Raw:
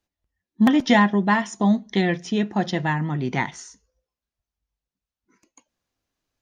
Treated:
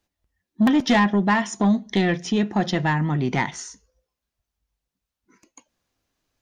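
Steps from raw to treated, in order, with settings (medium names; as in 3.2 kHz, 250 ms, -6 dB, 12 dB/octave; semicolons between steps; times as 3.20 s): in parallel at -2.5 dB: compression, threshold -26 dBFS, peak gain reduction 13.5 dB; on the sum: saturation -11.5 dBFS, distortion -16 dB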